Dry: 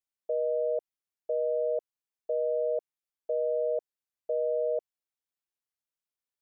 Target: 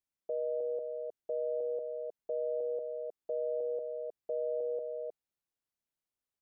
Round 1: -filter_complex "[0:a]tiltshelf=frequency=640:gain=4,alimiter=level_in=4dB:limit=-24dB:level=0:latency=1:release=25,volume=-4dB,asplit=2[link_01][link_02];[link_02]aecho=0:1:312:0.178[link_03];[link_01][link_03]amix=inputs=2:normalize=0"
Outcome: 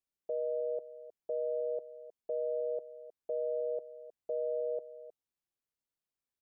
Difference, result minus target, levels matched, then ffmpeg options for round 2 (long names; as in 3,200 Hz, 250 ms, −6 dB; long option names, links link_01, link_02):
echo-to-direct −10 dB
-filter_complex "[0:a]tiltshelf=frequency=640:gain=4,alimiter=level_in=4dB:limit=-24dB:level=0:latency=1:release=25,volume=-4dB,asplit=2[link_01][link_02];[link_02]aecho=0:1:312:0.562[link_03];[link_01][link_03]amix=inputs=2:normalize=0"